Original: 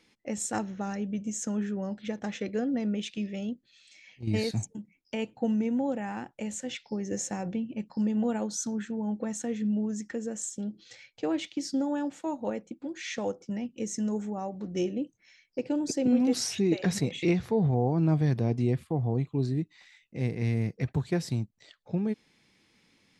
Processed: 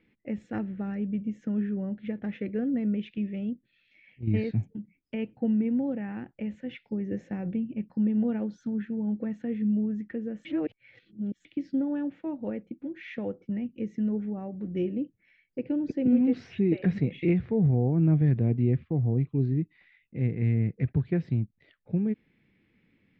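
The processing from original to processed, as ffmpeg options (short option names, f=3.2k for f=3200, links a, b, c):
-filter_complex "[0:a]asplit=3[a][b][c];[a]atrim=end=10.452[d];[b]atrim=start=10.448:end=11.452,asetpts=PTS-STARTPTS,areverse[e];[c]atrim=start=11.448[f];[d][e]acrossfade=d=0.004:c1=hsin:c2=hsin[g];[g][f]acrossfade=d=0.004:c1=hsin:c2=hsin,lowpass=f=2.3k:w=0.5412,lowpass=f=2.3k:w=1.3066,equalizer=f=940:w=0.78:g=-14.5,volume=4dB"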